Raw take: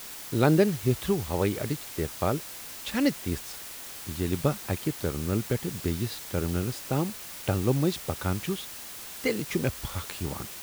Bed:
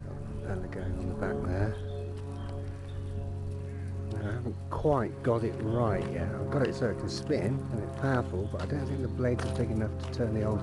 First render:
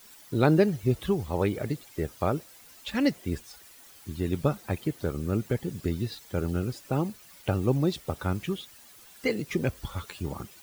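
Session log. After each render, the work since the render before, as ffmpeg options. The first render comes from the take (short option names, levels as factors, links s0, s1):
-af "afftdn=nr=13:nf=-41"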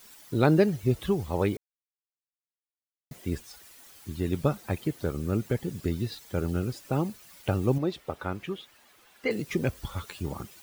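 -filter_complex "[0:a]asettb=1/sr,asplit=3[s0][s1][s2];[s0]atrim=end=7.784[s3];[s1]atrim=start=7.78:end=9.31,asetpts=PTS-STARTPTS,afade=t=in:d=0.004:c=qsin,afade=t=out:st=1.526:d=0.004:c=qsin,bass=f=250:g=-8,treble=f=4000:g=-11[s4];[s2]atrim=start=9.306[s5];[s3][s4]acrossfade=d=0.004:c1=hsin:c2=qsin[s6];[s6][s5]acrossfade=d=0.004:c1=qsin:c2=hsin,asplit=3[s7][s8][s9];[s7]atrim=end=1.57,asetpts=PTS-STARTPTS,afade=t=out:st=1.566:d=0.004:c=hsin[s10];[s8]atrim=start=1.57:end=3.11,asetpts=PTS-STARTPTS,volume=0[s11];[s9]atrim=start=3.11,asetpts=PTS-STARTPTS,afade=t=in:d=0.004:c=hsin[s12];[s10][s11][s12]concat=n=3:v=0:a=1"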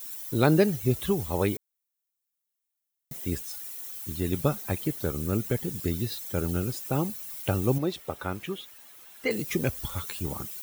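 -af "aemphasis=mode=production:type=50kf,bandreject=f=4700:w=18"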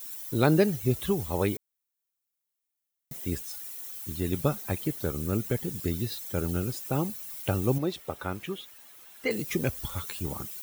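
-af "volume=0.891"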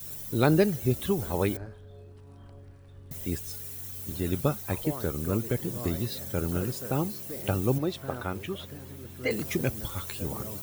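-filter_complex "[1:a]volume=0.266[s0];[0:a][s0]amix=inputs=2:normalize=0"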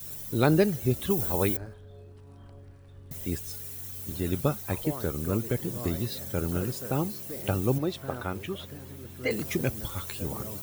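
-filter_complex "[0:a]asettb=1/sr,asplit=3[s0][s1][s2];[s0]atrim=end=1.104[s3];[s1]atrim=start=1.1:end=1.74,asetpts=PTS-STARTPTS,afade=t=in:d=0.004:c=qsin,afade=t=out:st=0.636:d=0.004:c=qsin,highshelf=f=7500:g=10[s4];[s2]atrim=start=1.736[s5];[s3][s4]acrossfade=d=0.004:c1=hsin:c2=qsin[s6];[s6][s5]acrossfade=d=0.004:c1=qsin:c2=hsin"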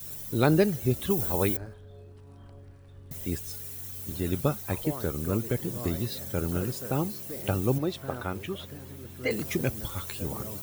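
-af anull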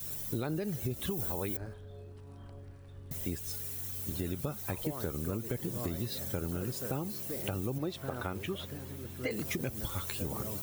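-af "alimiter=limit=0.126:level=0:latency=1:release=94,acompressor=threshold=0.0282:ratio=6"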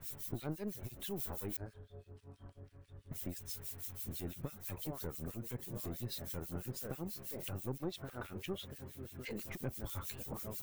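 -filter_complex "[0:a]aeval=exprs='(tanh(28.2*val(0)+0.5)-tanh(0.5))/28.2':c=same,acrossover=split=1900[s0][s1];[s0]aeval=exprs='val(0)*(1-1/2+1/2*cos(2*PI*6.1*n/s))':c=same[s2];[s1]aeval=exprs='val(0)*(1-1/2-1/2*cos(2*PI*6.1*n/s))':c=same[s3];[s2][s3]amix=inputs=2:normalize=0"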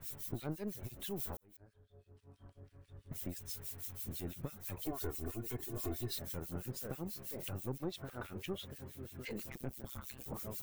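-filter_complex "[0:a]asettb=1/sr,asplit=3[s0][s1][s2];[s0]atrim=end=4.864[s3];[s1]atrim=start=4.86:end=6.19,asetpts=PTS-STARTPTS,afade=t=in:d=0.004:c=qsin,afade=t=out:st=1.326:d=0.004:c=qsin,aecho=1:1:2.8:0.98,atrim=end_sample=58653[s4];[s2]atrim=start=6.186[s5];[s3][s4]acrossfade=d=0.004:c1=hsin:c2=qsin[s6];[s6][s5]acrossfade=d=0.004:c1=qsin:c2=hsin,asettb=1/sr,asplit=3[s7][s8][s9];[s7]atrim=end=9.504[s10];[s8]atrim=start=9.5:end=10.26,asetpts=PTS-STARTPTS,afade=t=in:d=0.004:c=qsin,afade=t=out:st=0.756:d=0.004:c=qsin,tremolo=f=130:d=1[s11];[s9]atrim=start=10.256[s12];[s10][s11]acrossfade=d=0.004:c1=hsin:c2=qsin[s13];[s13][s12]acrossfade=d=0.004:c1=qsin:c2=hsin,asplit=2[s14][s15];[s14]atrim=end=1.37,asetpts=PTS-STARTPTS,afade=t=out:st=1.366:d=0.004:c=hsin[s16];[s15]atrim=start=1.37,asetpts=PTS-STARTPTS,afade=t=in:d=1.59[s17];[s16][s17]concat=n=2:v=0:a=1"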